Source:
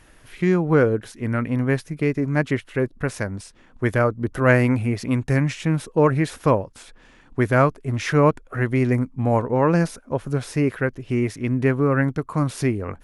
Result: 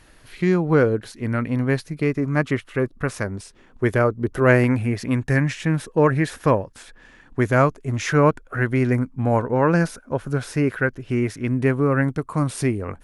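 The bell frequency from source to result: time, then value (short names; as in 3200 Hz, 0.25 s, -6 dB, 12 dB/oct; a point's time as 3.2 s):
bell +7 dB 0.27 oct
4300 Hz
from 2.04 s 1200 Hz
from 3.24 s 400 Hz
from 4.64 s 1700 Hz
from 7.4 s 6700 Hz
from 8.11 s 1500 Hz
from 11.48 s 8800 Hz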